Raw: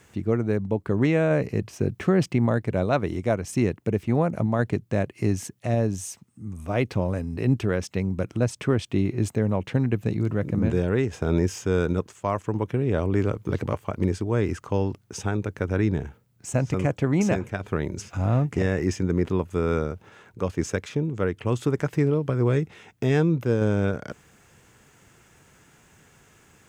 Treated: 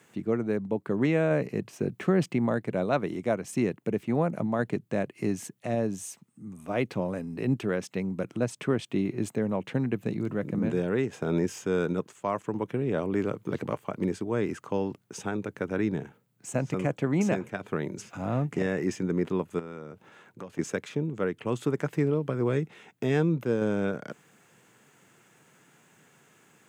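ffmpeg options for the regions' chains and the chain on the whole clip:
-filter_complex "[0:a]asettb=1/sr,asplit=3[a][b][c];[a]atrim=end=19.594[d];[b]atrim=start=19.59:end=20.59,asetpts=PTS-STARTPTS,afade=t=in:d=0.004:c=qsin,afade=t=out:st=0.996:d=0.004:c=qsin,bandreject=f=430:w=14,acompressor=threshold=-32dB:ratio=5:attack=3.2:release=140:knee=1:detection=peak[e];[c]atrim=start=20.586[f];[d][e]acrossfade=d=0.004:c1=hsin:c2=qsin[g];[g][f]acrossfade=d=0.004:c1=qsin:c2=hsin,highpass=f=140:w=0.5412,highpass=f=140:w=1.3066,equalizer=f=5.4k:w=2.6:g=-4,volume=-3dB"

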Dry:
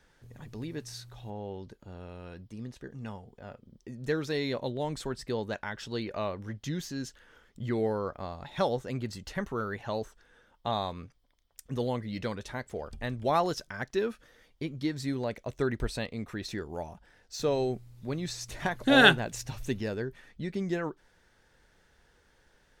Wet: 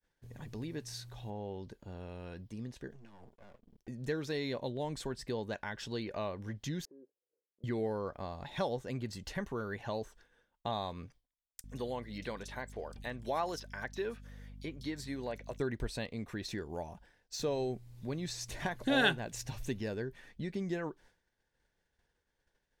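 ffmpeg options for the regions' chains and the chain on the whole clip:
-filter_complex "[0:a]asettb=1/sr,asplit=3[a][b][c];[a]atrim=end=2.924[d];[b]atrim=start=2.92:end=3.88,asetpts=PTS-STARTPTS,afade=t=in:d=0.004:c=qsin,afade=t=out:st=0.956:d=0.004:c=qsin,acompressor=threshold=-44dB:ratio=16:attack=3.2:release=140:knee=1:detection=peak,aeval=exprs='max(val(0),0)':c=same[e];[c]atrim=start=3.876[f];[d][e]acrossfade=d=0.004:c1=hsin:c2=qsin[g];[g][f]acrossfade=d=0.004:c1=qsin:c2=hsin,asettb=1/sr,asplit=3[h][i][j];[h]atrim=end=6.854[k];[i]atrim=start=6.85:end=7.64,asetpts=PTS-STARTPTS,afade=t=in:d=0.004:c=qsin,afade=t=out:st=0.786:d=0.004:c=qsin,asuperpass=centerf=430:order=4:qfactor=2.1,acompressor=threshold=-53dB:ratio=4:attack=3.2:release=140:knee=1:detection=peak[l];[j]atrim=start=7.636[m];[k][l]acrossfade=d=0.004:c1=hsin:c2=qsin[n];[n][m]acrossfade=d=0.004:c1=qsin:c2=hsin,asettb=1/sr,asplit=3[o][p][q];[o]atrim=end=11.614[r];[p]atrim=start=11.61:end=15.6,asetpts=PTS-STARTPTS,afade=t=in:d=0.004:c=qsin,afade=t=out:st=3.986:d=0.004:c=qsin,lowshelf=f=250:g=-11.5,aeval=exprs='val(0)+0.00398*(sin(2*PI*50*n/s)+sin(2*PI*2*50*n/s)/2+sin(2*PI*3*50*n/s)/3+sin(2*PI*4*50*n/s)/4+sin(2*PI*5*50*n/s)/5)':c=same,acrossover=split=4100[s][t];[s]adelay=30[u];[u][t]amix=inputs=2:normalize=0,atrim=end_sample=175959[v];[q]atrim=start=15.596[w];[r][v]acrossfade=d=0.004:c1=hsin:c2=qsin[x];[x][w]acrossfade=d=0.004:c1=qsin:c2=hsin,bandreject=f=1.3k:w=8.2,agate=range=-33dB:threshold=-53dB:ratio=3:detection=peak,acompressor=threshold=-41dB:ratio=1.5"

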